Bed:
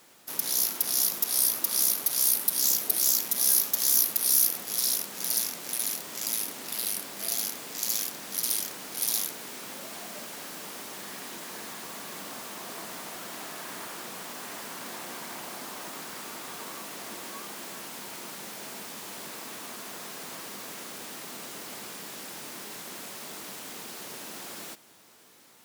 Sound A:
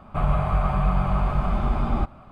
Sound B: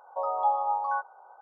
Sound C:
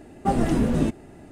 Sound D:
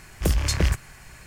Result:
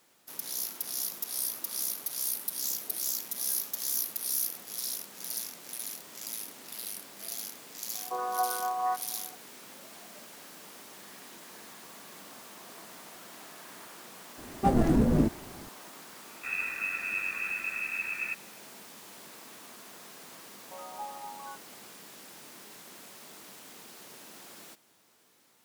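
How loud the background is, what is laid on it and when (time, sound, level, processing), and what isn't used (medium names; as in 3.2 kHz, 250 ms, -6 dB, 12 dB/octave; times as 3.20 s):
bed -8.5 dB
7.94 s: add B -2.5 dB + vocoder on a held chord bare fifth, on B3
14.38 s: add C -2 dB + local Wiener filter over 15 samples
16.29 s: add A -14.5 dB + frequency inversion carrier 2.6 kHz
20.55 s: add B -15.5 dB
not used: D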